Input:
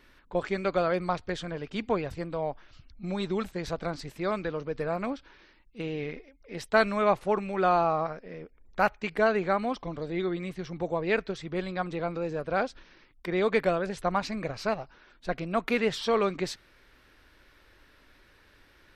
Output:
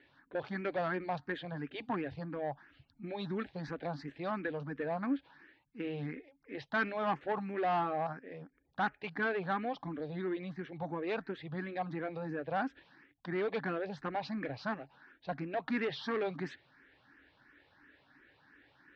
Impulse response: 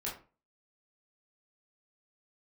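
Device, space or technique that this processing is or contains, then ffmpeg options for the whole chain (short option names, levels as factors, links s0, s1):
barber-pole phaser into a guitar amplifier: -filter_complex "[0:a]asplit=2[s0][s1];[s1]afreqshift=2.9[s2];[s0][s2]amix=inputs=2:normalize=1,asoftclip=type=tanh:threshold=0.0531,highpass=94,equalizer=f=140:t=q:w=4:g=8,equalizer=f=280:t=q:w=4:g=10,equalizer=f=810:t=q:w=4:g=7,equalizer=f=1700:t=q:w=4:g=9,lowpass=f=4400:w=0.5412,lowpass=f=4400:w=1.3066,volume=0.562"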